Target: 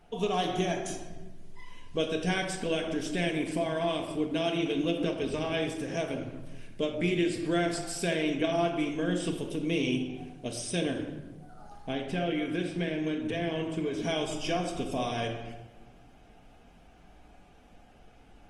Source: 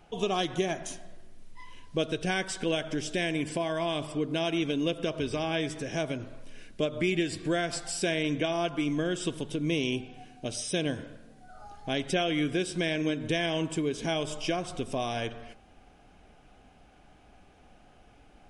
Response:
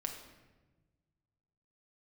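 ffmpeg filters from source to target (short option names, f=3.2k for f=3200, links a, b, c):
-filter_complex "[0:a]asettb=1/sr,asplit=3[a][b][c];[a]atrim=end=11.814[d];[b]atrim=start=11.81:end=14.03,asetpts=PTS-STARTPTS,afade=t=in:d=0.004:c=qsin,afade=t=out:st=2.216:d=0.004:c=qsin,acrossover=split=640|3600[e][f][g];[e]acompressor=threshold=-29dB:ratio=4[h];[f]acompressor=threshold=-35dB:ratio=4[i];[g]acompressor=threshold=-54dB:ratio=4[j];[h][i][j]amix=inputs=3:normalize=0[k];[c]atrim=start=14.026[l];[d][k]acrossfade=d=0.004:c1=hsin:c2=qsin[m];[m][l]acrossfade=d=0.004:c1=qsin:c2=hsin[n];[1:a]atrim=start_sample=2205,asetrate=52920,aresample=44100[o];[n][o]afir=irnorm=-1:irlink=0,volume=1.5dB" -ar 48000 -c:a libopus -b:a 24k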